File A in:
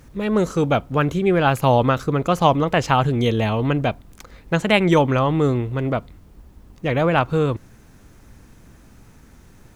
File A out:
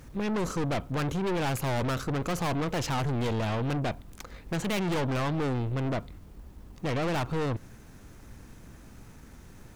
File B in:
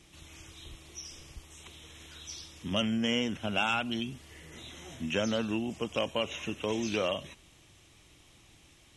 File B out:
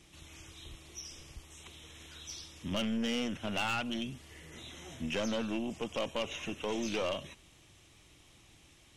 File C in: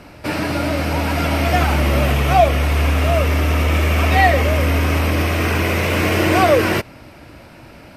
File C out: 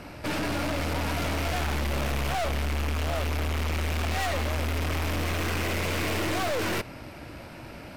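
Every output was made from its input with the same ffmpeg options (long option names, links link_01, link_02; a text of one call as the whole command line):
ffmpeg -i in.wav -af "aeval=exprs='(tanh(22.4*val(0)+0.4)-tanh(0.4))/22.4':channel_layout=same" out.wav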